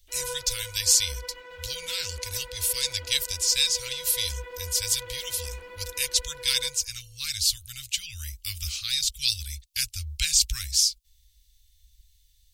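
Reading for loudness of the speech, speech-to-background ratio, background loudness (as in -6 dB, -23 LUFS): -25.5 LUFS, 17.0 dB, -42.5 LUFS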